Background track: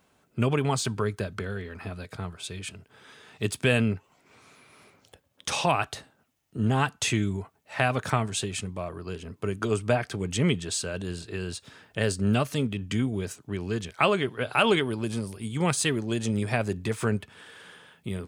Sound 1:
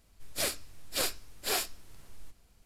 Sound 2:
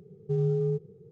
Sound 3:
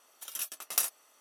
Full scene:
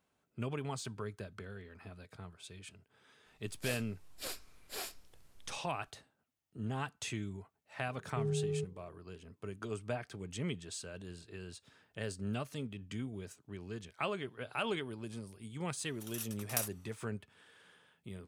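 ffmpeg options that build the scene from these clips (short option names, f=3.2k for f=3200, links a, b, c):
-filter_complex "[0:a]volume=-14dB[a];[1:a]atrim=end=2.65,asetpts=PTS-STARTPTS,volume=-11.5dB,afade=t=in:d=0.004:c=hsin,afade=t=out:st=2.646:d=0.004:c=hsin,adelay=3260[b];[2:a]atrim=end=1.11,asetpts=PTS-STARTPTS,volume=-8.5dB,afade=t=in:d=0.004:c=hsin,afade=t=out:st=1.106:d=0.004:c=hsin,adelay=7870[c];[3:a]atrim=end=1.2,asetpts=PTS-STARTPTS,volume=-7dB,afade=t=in:d=0.004:c=hsin,afade=t=out:st=1.196:d=0.004:c=hsin,adelay=15790[d];[a][b][c][d]amix=inputs=4:normalize=0"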